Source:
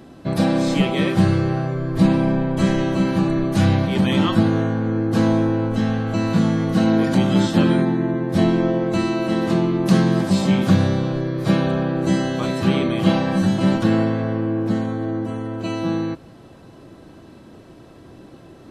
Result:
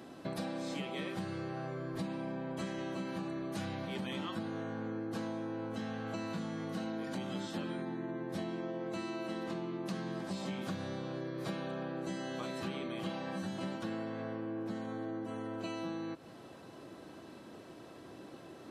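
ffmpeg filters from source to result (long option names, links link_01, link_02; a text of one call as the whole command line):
ffmpeg -i in.wav -filter_complex "[0:a]asettb=1/sr,asplit=3[link_01][link_02][link_03];[link_01]atrim=end=9.434[link_04];[link_02]atrim=start=9.43:end=10.46,asetpts=PTS-STARTPTS,afade=type=in:duration=0.004:curve=qsin,afade=type=out:start_time=1.026:duration=0.004:curve=qsin,highshelf=frequency=8100:gain=-6.5[link_05];[link_03]atrim=start=10.456[link_06];[link_04][link_05]acrossfade=duration=0.004:curve1=hsin:curve2=qsin[link_07];[link_07][link_06]acrossfade=duration=0.004:curve1=qsin:curve2=hsin,highpass=frequency=330:poles=1,acompressor=threshold=-33dB:ratio=6,volume=-4dB" out.wav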